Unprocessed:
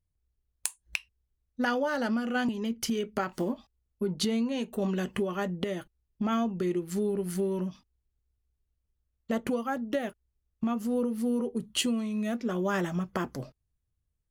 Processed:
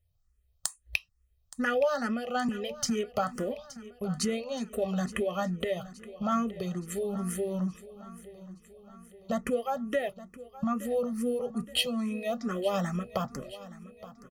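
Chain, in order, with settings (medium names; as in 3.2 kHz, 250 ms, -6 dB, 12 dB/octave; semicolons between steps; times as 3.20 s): comb 1.6 ms, depth 64%; in parallel at +1 dB: compression, threshold -41 dBFS, peak gain reduction 17.5 dB; on the sum: feedback delay 871 ms, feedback 56%, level -17 dB; barber-pole phaser +2.3 Hz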